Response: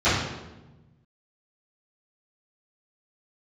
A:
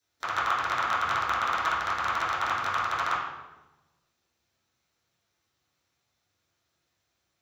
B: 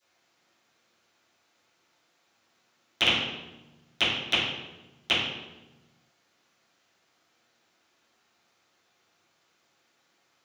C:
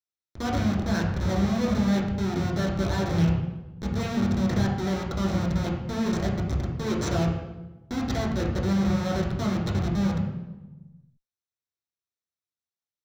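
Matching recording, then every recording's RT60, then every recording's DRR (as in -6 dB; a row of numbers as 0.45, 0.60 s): B; 1.1, 1.1, 1.1 s; -11.5, -20.5, -4.0 dB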